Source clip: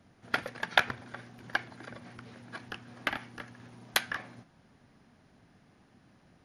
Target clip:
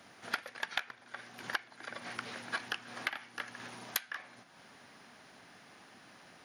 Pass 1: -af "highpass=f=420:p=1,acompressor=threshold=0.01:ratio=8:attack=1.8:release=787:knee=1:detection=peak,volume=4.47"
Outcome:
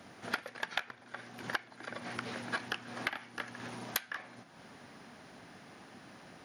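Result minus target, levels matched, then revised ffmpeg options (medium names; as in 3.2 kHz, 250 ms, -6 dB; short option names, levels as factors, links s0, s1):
500 Hz band +4.0 dB
-af "highpass=f=1100:p=1,acompressor=threshold=0.01:ratio=8:attack=1.8:release=787:knee=1:detection=peak,volume=4.47"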